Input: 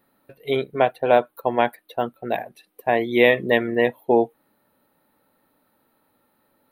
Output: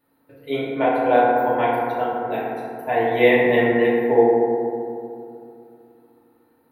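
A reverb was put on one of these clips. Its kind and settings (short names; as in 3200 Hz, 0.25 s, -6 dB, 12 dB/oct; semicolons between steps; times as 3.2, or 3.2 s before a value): FDN reverb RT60 2.6 s, low-frequency decay 1.25×, high-frequency decay 0.3×, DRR -9 dB; gain -8 dB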